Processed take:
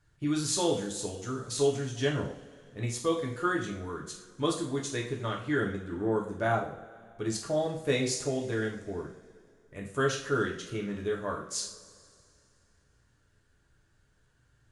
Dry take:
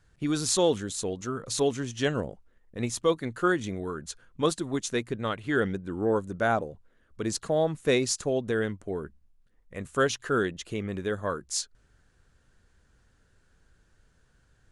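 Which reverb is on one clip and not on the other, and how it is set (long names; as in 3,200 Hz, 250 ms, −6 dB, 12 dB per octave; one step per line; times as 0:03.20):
coupled-rooms reverb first 0.46 s, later 2.6 s, from −20 dB, DRR −1.5 dB
level −6.5 dB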